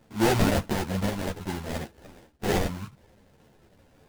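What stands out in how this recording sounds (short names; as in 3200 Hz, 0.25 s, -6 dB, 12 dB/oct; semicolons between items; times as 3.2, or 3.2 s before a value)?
aliases and images of a low sample rate 1200 Hz, jitter 20%; a shimmering, thickened sound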